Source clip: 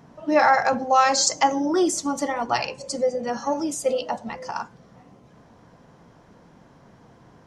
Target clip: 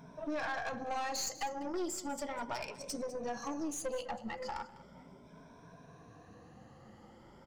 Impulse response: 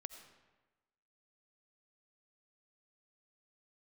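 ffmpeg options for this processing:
-af "afftfilt=real='re*pow(10,13/40*sin(2*PI*(1.6*log(max(b,1)*sr/1024/100)/log(2)-(0.37)*(pts-256)/sr)))':imag='im*pow(10,13/40*sin(2*PI*(1.6*log(max(b,1)*sr/1024/100)/log(2)-(0.37)*(pts-256)/sr)))':win_size=1024:overlap=0.75,acompressor=threshold=-32dB:ratio=2.5,flanger=delay=1.3:depth=2.7:regen=-75:speed=1.2:shape=sinusoidal,aeval=exprs='(tanh(39.8*val(0)+0.45)-tanh(0.45))/39.8':c=same,aecho=1:1:199:0.141"

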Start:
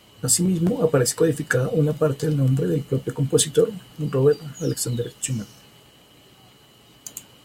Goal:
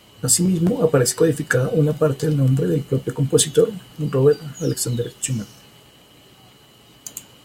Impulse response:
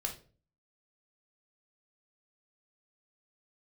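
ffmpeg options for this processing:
-af "bandreject=f=376.9:t=h:w=4,bandreject=f=753.8:t=h:w=4,bandreject=f=1.1307k:t=h:w=4,bandreject=f=1.5076k:t=h:w=4,bandreject=f=1.8845k:t=h:w=4,bandreject=f=2.2614k:t=h:w=4,bandreject=f=2.6383k:t=h:w=4,bandreject=f=3.0152k:t=h:w=4,bandreject=f=3.3921k:t=h:w=4,bandreject=f=3.769k:t=h:w=4,bandreject=f=4.1459k:t=h:w=4,bandreject=f=4.5228k:t=h:w=4,bandreject=f=4.8997k:t=h:w=4,bandreject=f=5.2766k:t=h:w=4,bandreject=f=5.6535k:t=h:w=4,bandreject=f=6.0304k:t=h:w=4,bandreject=f=6.4073k:t=h:w=4,bandreject=f=6.7842k:t=h:w=4,bandreject=f=7.1611k:t=h:w=4,volume=2.5dB"

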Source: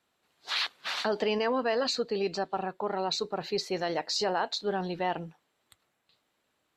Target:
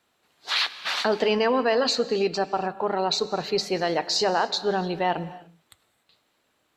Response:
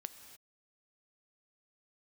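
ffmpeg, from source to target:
-filter_complex "[0:a]bandreject=f=68.59:t=h:w=4,bandreject=f=137.18:t=h:w=4,bandreject=f=205.77:t=h:w=4,bandreject=f=274.36:t=h:w=4,asplit=2[a][b];[1:a]atrim=start_sample=2205[c];[b][c]afir=irnorm=-1:irlink=0,volume=4dB[d];[a][d]amix=inputs=2:normalize=0"

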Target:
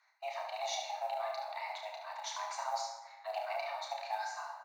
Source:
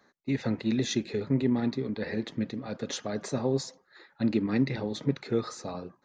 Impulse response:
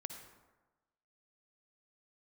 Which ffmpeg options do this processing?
-filter_complex "[0:a]highpass=370,bandreject=f=60:t=h:w=6,bandreject=f=120:t=h:w=6,bandreject=f=180:t=h:w=6,bandreject=f=240:t=h:w=6,bandreject=f=300:t=h:w=6,bandreject=f=360:t=h:w=6,bandreject=f=420:t=h:w=6,bandreject=f=480:t=h:w=6,bandreject=f=540:t=h:w=6,bandreject=f=600:t=h:w=6,afreqshift=480,atempo=1.3,acrusher=bits=8:mode=log:mix=0:aa=0.000001,asetrate=40440,aresample=44100,atempo=1.09051,aecho=1:1:32|72:0.562|0.398[a];[1:a]atrim=start_sample=2205[b];[a][b]afir=irnorm=-1:irlink=0,volume=-2.5dB"

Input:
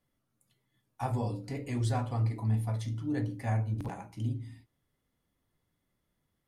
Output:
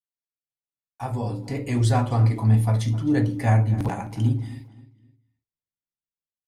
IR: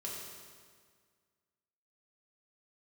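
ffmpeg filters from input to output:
-filter_complex "[0:a]agate=range=-34dB:threshold=-59dB:ratio=16:detection=peak,dynaudnorm=f=560:g=5:m=15dB,asplit=2[a][b];[b]adelay=261,lowpass=f=4.9k:p=1,volume=-17dB,asplit=2[c][d];[d]adelay=261,lowpass=f=4.9k:p=1,volume=0.35,asplit=2[e][f];[f]adelay=261,lowpass=f=4.9k:p=1,volume=0.35[g];[c][e][g]amix=inputs=3:normalize=0[h];[a][h]amix=inputs=2:normalize=0,volume=-3.5dB"

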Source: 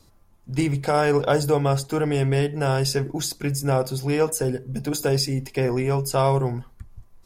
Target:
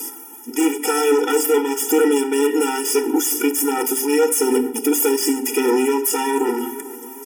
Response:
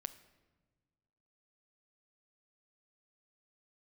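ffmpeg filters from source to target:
-filter_complex "[0:a]aemphasis=mode=production:type=50kf,acontrast=85,equalizer=f=11k:w=1.4:g=6,bandreject=f=50:t=h:w=6,bandreject=f=100:t=h:w=6,bandreject=f=150:t=h:w=6,bandreject=f=200:t=h:w=6,bandreject=f=250:t=h:w=6,bandreject=f=300:t=h:w=6,bandreject=f=350:t=h:w=6,bandreject=f=400:t=h:w=6,areverse,acompressor=threshold=-21dB:ratio=6,areverse,asoftclip=type=hard:threshold=-25.5dB,asuperstop=centerf=4200:order=8:qfactor=2.7,asplit=2[a][b];[b]adelay=444,lowpass=f=2.2k:p=1,volume=-21.5dB,asplit=2[c][d];[d]adelay=444,lowpass=f=2.2k:p=1,volume=0.54,asplit=2[e][f];[f]adelay=444,lowpass=f=2.2k:p=1,volume=0.54,asplit=2[g][h];[h]adelay=444,lowpass=f=2.2k:p=1,volume=0.54[i];[a][c][e][g][i]amix=inputs=5:normalize=0[j];[1:a]atrim=start_sample=2205,afade=t=out:st=0.2:d=0.01,atrim=end_sample=9261[k];[j][k]afir=irnorm=-1:irlink=0,alimiter=level_in=30dB:limit=-1dB:release=50:level=0:latency=1,afftfilt=real='re*eq(mod(floor(b*sr/1024/250),2),1)':imag='im*eq(mod(floor(b*sr/1024/250),2),1)':win_size=1024:overlap=0.75,volume=-7.5dB"

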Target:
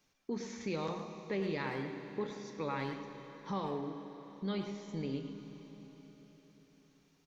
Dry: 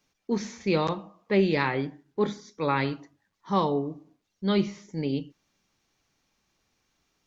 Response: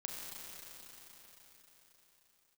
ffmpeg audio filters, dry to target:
-filter_complex "[0:a]acompressor=threshold=-38dB:ratio=2.5,asplit=2[a][b];[b]adelay=110,highpass=300,lowpass=3.4k,asoftclip=type=hard:threshold=-32.5dB,volume=-7dB[c];[a][c]amix=inputs=2:normalize=0,asplit=2[d][e];[1:a]atrim=start_sample=2205[f];[e][f]afir=irnorm=-1:irlink=0,volume=-2dB[g];[d][g]amix=inputs=2:normalize=0,volume=-5dB"

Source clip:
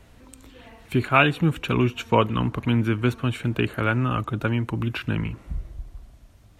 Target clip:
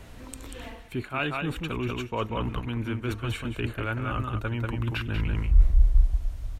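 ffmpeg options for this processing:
-af "aecho=1:1:189:0.501,areverse,acompressor=threshold=-32dB:ratio=6,areverse,asubboost=boost=10.5:cutoff=52,volume=5.5dB"

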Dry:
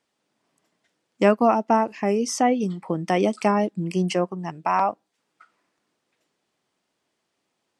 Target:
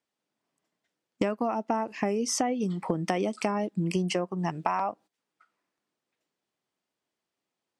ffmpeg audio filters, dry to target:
-filter_complex "[0:a]agate=range=-17dB:threshold=-43dB:ratio=16:detection=peak,asplit=2[a][b];[b]alimiter=limit=-11.5dB:level=0:latency=1,volume=1dB[c];[a][c]amix=inputs=2:normalize=0,acompressor=threshold=-24dB:ratio=12"

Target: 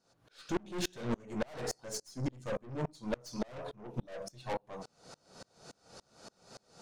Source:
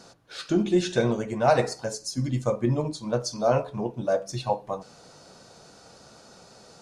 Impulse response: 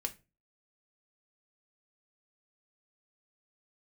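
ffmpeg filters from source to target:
-af "aeval=exprs='(tanh(35.5*val(0)+0.4)-tanh(0.4))/35.5':c=same,aeval=exprs='val(0)*pow(10,-32*if(lt(mod(-3.5*n/s,1),2*abs(-3.5)/1000),1-mod(-3.5*n/s,1)/(2*abs(-3.5)/1000),(mod(-3.5*n/s,1)-2*abs(-3.5)/1000)/(1-2*abs(-3.5)/1000))/20)':c=same,volume=4.5dB"

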